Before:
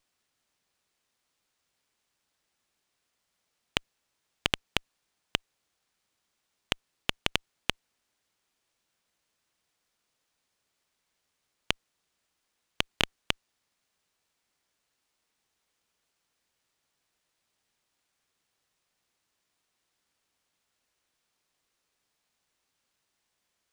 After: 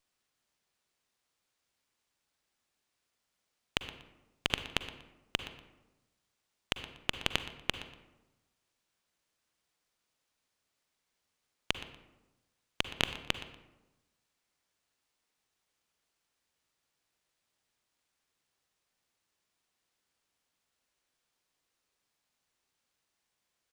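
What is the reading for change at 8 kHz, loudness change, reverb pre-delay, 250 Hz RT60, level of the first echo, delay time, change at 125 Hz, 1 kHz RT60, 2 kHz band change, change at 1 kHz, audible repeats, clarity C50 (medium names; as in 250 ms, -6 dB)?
-3.5 dB, -3.0 dB, 40 ms, 1.2 s, -16.0 dB, 120 ms, -2.5 dB, 1.0 s, -3.0 dB, -3.0 dB, 2, 10.0 dB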